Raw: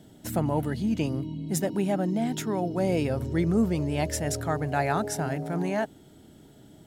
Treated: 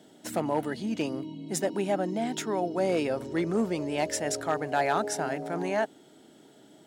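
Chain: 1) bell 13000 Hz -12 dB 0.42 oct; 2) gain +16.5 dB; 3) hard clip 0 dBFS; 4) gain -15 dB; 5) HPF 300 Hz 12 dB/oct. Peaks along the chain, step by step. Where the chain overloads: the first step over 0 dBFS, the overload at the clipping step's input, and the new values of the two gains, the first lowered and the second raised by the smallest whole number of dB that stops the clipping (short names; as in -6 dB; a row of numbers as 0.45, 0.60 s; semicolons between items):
-11.5, +5.0, 0.0, -15.0, -14.0 dBFS; step 2, 5.0 dB; step 2 +11.5 dB, step 4 -10 dB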